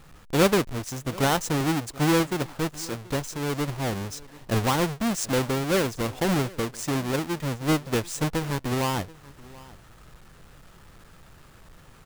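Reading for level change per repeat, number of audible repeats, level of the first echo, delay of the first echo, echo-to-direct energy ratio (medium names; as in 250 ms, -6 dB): no regular repeats, 1, -21.5 dB, 732 ms, -21.5 dB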